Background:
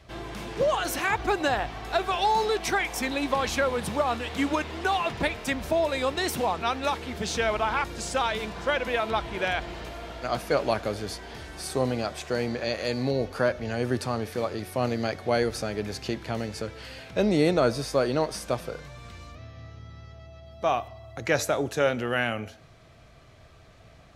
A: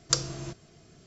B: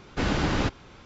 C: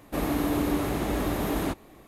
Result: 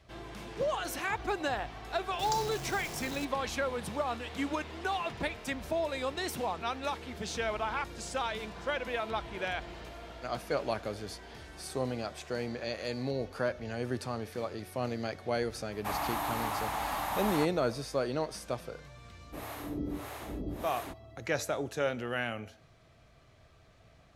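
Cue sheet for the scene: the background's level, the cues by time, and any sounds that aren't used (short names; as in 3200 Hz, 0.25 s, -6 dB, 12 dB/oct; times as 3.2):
background -7.5 dB
2.19 add A -16.5 dB + zero-crossing step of -20.5 dBFS
15.72 add C -3 dB + resonant low shelf 590 Hz -12 dB, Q 3
19.2 add C -7.5 dB + harmonic tremolo 1.6 Hz, depth 100%, crossover 510 Hz
not used: B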